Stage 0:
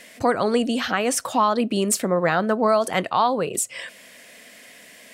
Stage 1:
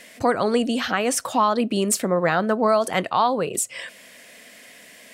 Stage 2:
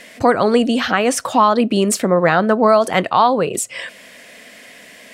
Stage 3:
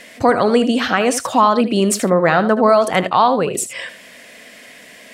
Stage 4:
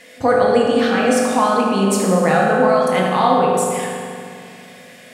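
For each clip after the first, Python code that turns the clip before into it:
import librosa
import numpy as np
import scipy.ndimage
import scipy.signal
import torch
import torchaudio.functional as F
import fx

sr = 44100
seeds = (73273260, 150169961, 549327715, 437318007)

y1 = x
y2 = fx.high_shelf(y1, sr, hz=6600.0, db=-7.5)
y2 = F.gain(torch.from_numpy(y2), 6.5).numpy()
y3 = y2 + 10.0 ** (-12.0 / 20.0) * np.pad(y2, (int(77 * sr / 1000.0), 0))[:len(y2)]
y4 = fx.rev_fdn(y3, sr, rt60_s=2.3, lf_ratio=1.4, hf_ratio=0.65, size_ms=12.0, drr_db=-3.5)
y4 = F.gain(torch.from_numpy(y4), -6.0).numpy()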